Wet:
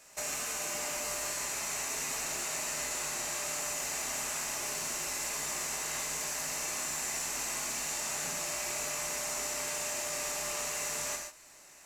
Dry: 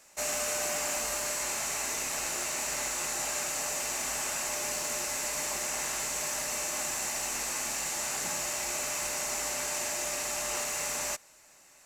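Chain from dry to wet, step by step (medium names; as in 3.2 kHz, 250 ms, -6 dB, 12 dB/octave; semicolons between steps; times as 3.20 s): compression, threshold -35 dBFS, peak gain reduction 6.5 dB; gated-style reverb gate 170 ms flat, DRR 0.5 dB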